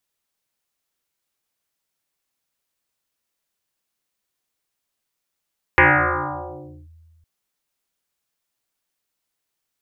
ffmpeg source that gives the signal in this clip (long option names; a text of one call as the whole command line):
ffmpeg -f lavfi -i "aevalsrc='0.398*pow(10,-3*t/1.88)*sin(2*PI*81.5*t+10*clip(1-t/1.1,0,1)*sin(2*PI*2.71*81.5*t))':duration=1.46:sample_rate=44100" out.wav